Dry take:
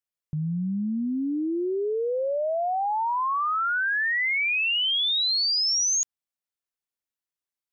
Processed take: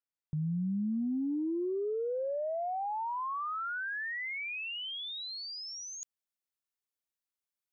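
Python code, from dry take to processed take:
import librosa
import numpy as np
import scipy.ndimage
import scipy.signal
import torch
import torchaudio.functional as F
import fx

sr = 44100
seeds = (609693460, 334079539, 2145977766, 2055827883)

y = fx.high_shelf(x, sr, hz=4700.0, db=fx.steps((0.0, -9.0), (0.9, 3.5)))
y = fx.over_compress(y, sr, threshold_db=-27.0, ratio=-0.5)
y = F.gain(torch.from_numpy(y), -7.5).numpy()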